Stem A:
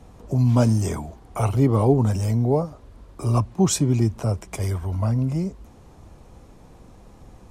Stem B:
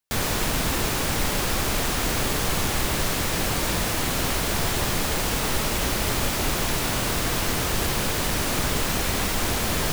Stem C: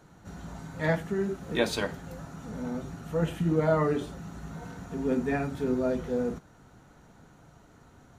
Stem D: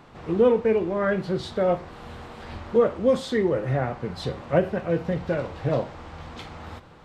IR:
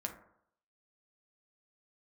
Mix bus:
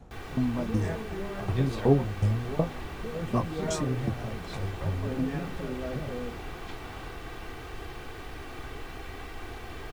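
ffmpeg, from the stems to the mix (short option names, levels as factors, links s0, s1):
-filter_complex "[0:a]lowpass=f=2100:p=1,flanger=delay=19:depth=4.6:speed=0.38,aeval=exprs='val(0)*pow(10,-20*if(lt(mod(2.7*n/s,1),2*abs(2.7)/1000),1-mod(2.7*n/s,1)/(2*abs(2.7)/1000),(mod(2.7*n/s,1)-2*abs(2.7)/1000)/(1-2*abs(2.7)/1000))/20)':c=same,volume=1.26,asplit=2[s0][s1];[1:a]acrossover=split=3300[s2][s3];[s3]acompressor=threshold=0.00562:ratio=4:attack=1:release=60[s4];[s2][s4]amix=inputs=2:normalize=0,aecho=1:1:2.6:0.59,volume=0.158[s5];[2:a]volume=0.376[s6];[3:a]acrossover=split=170[s7][s8];[s8]acompressor=threshold=0.0224:ratio=6[s9];[s7][s9]amix=inputs=2:normalize=0,adelay=300,volume=0.398[s10];[s1]apad=whole_len=360810[s11];[s6][s11]sidechaincompress=threshold=0.0447:ratio=8:attack=16:release=473[s12];[s0][s5][s12][s10]amix=inputs=4:normalize=0"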